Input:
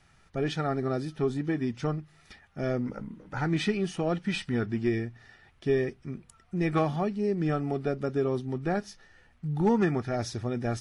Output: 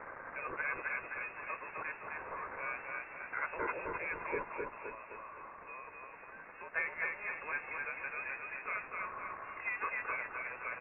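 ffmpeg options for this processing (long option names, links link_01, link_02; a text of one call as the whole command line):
ffmpeg -i in.wav -filter_complex "[0:a]aeval=exprs='val(0)+0.5*0.0224*sgn(val(0))':channel_layout=same,highpass=740,tiltshelf=frequency=970:gain=-6,asettb=1/sr,asplit=3[link_01][link_02][link_03];[link_01]atrim=end=4.434[link_04];[link_02]atrim=start=4.43:end=6.74,asetpts=PTS-STARTPTS,afade=type=in:duration=0.004:curve=qsin,afade=type=out:start_time=2.306:duration=0.004:curve=qsin,acompressor=threshold=-39dB:ratio=6[link_05];[link_03]atrim=start=6.736[link_06];[link_04][link_05]acrossfade=duration=0.004:curve1=hsin:curve2=qsin[link_07];[link_07][link_06]acrossfade=duration=0.004:curve1=qsin:curve2=hsin,aecho=1:1:259|518|777|1036|1295|1554:0.708|0.326|0.15|0.0689|0.0317|0.0146,lowpass=frequency=2500:width_type=q:width=0.5098,lowpass=frequency=2500:width_type=q:width=0.6013,lowpass=frequency=2500:width_type=q:width=0.9,lowpass=frequency=2500:width_type=q:width=2.563,afreqshift=-2900,volume=-5.5dB" out.wav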